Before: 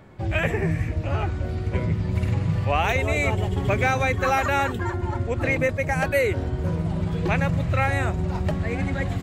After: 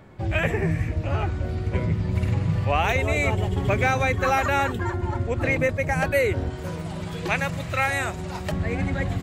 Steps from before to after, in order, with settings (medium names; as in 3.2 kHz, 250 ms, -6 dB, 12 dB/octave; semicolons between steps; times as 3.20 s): 6.50–8.52 s: tilt EQ +2.5 dB/octave